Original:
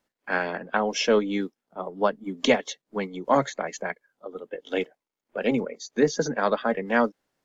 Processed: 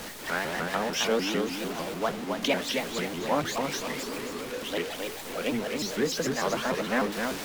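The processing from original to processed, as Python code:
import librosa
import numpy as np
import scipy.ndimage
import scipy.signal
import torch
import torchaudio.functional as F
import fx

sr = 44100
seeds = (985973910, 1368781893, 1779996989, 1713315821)

p1 = x + 0.5 * 10.0 ** (-24.5 / 20.0) * np.sign(x)
p2 = fx.spec_repair(p1, sr, seeds[0], start_s=3.58, length_s=0.7, low_hz=210.0, high_hz=1900.0, source='after')
p3 = p2 + fx.echo_feedback(p2, sr, ms=264, feedback_pct=42, wet_db=-4.5, dry=0)
p4 = fx.dynamic_eq(p3, sr, hz=3100.0, q=0.7, threshold_db=-35.0, ratio=4.0, max_db=4)
p5 = fx.vibrato_shape(p4, sr, shape='saw_up', rate_hz=6.7, depth_cents=250.0)
y = p5 * librosa.db_to_amplitude(-8.5)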